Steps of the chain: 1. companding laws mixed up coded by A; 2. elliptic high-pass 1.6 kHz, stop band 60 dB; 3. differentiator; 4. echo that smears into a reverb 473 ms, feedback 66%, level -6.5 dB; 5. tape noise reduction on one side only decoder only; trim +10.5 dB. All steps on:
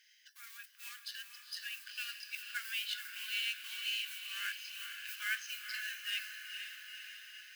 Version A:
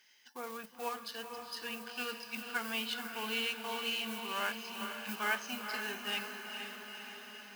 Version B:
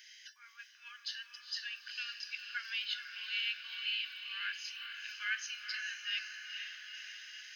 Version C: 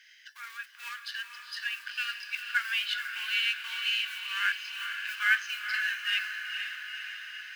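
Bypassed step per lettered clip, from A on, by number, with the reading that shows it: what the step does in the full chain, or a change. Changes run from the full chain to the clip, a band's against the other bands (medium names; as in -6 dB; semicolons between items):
2, 1 kHz band +15.5 dB; 1, distortion -23 dB; 3, 8 kHz band -11.5 dB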